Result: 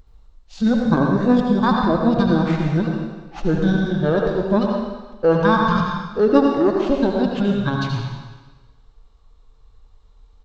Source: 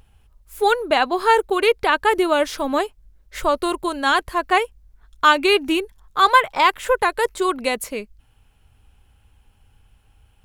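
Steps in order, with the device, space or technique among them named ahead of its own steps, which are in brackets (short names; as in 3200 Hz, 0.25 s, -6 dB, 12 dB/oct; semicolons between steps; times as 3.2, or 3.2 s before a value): 3.53–4.07 doubler 37 ms -2 dB; monster voice (pitch shift -10.5 st; formant shift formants -6 st; low shelf 140 Hz +7.5 dB; reverb RT60 1.3 s, pre-delay 70 ms, DRR 0.5 dB); gain -2 dB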